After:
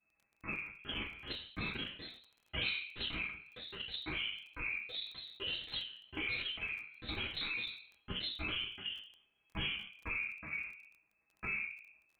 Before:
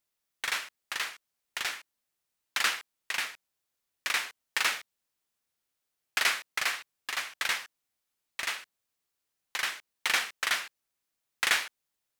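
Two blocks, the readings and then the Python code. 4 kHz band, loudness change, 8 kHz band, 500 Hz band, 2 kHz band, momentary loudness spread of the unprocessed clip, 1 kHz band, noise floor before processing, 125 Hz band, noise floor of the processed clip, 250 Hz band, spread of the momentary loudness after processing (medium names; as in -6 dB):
-5.0 dB, -8.5 dB, under -40 dB, -3.5 dB, -8.5 dB, 11 LU, -14.0 dB, -84 dBFS, no reading, -78 dBFS, +9.0 dB, 10 LU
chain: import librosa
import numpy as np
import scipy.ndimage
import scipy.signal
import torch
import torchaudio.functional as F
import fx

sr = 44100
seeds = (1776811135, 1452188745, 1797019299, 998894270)

p1 = fx.bit_reversed(x, sr, seeds[0], block=64)
p2 = fx.env_lowpass_down(p1, sr, base_hz=550.0, full_db=-27.0)
p3 = (np.kron(scipy.signal.resample_poly(p2, 1, 8), np.eye(8)[0]) * 8)[:len(p2)]
p4 = fx.chorus_voices(p3, sr, voices=2, hz=0.84, base_ms=15, depth_ms=2.5, mix_pct=45)
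p5 = fx.peak_eq(p4, sr, hz=980.0, db=-6.0, octaves=2.7)
p6 = fx.room_shoebox(p5, sr, seeds[1], volume_m3=240.0, walls='furnished', distance_m=4.7)
p7 = fx.freq_invert(p6, sr, carrier_hz=2600)
p8 = fx.echo_pitch(p7, sr, ms=502, semitones=4, count=2, db_per_echo=-3.0)
p9 = fx.level_steps(p8, sr, step_db=23)
p10 = p8 + F.gain(torch.from_numpy(p9), 2.0).numpy()
p11 = fx.dynamic_eq(p10, sr, hz=1400.0, q=0.75, threshold_db=-49.0, ratio=4.0, max_db=-5)
p12 = fx.dmg_crackle(p11, sr, seeds[2], per_s=22.0, level_db=-54.0)
p13 = fx.sustainer(p12, sr, db_per_s=95.0)
y = F.gain(torch.from_numpy(p13), 1.0).numpy()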